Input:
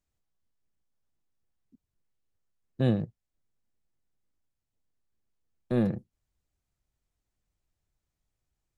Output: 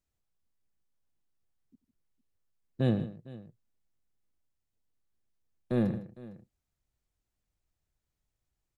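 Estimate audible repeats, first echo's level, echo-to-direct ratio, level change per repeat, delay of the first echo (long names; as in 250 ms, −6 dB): 3, −18.5 dB, −12.5 dB, repeats not evenly spaced, 91 ms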